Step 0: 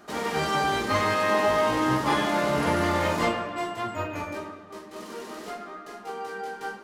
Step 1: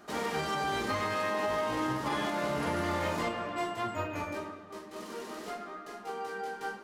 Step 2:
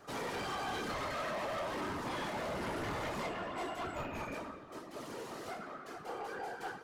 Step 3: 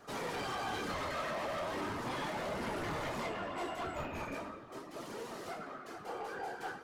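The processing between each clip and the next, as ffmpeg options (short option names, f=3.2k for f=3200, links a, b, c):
-af "alimiter=limit=-19.5dB:level=0:latency=1:release=205,volume=-3dB"
-af "afftfilt=real='hypot(re,im)*cos(2*PI*random(0))':imag='hypot(re,im)*sin(2*PI*random(1))':win_size=512:overlap=0.75,asoftclip=type=tanh:threshold=-37.5dB,volume=3.5dB"
-af "flanger=delay=4:depth=9.8:regen=69:speed=0.38:shape=triangular,volume=4.5dB"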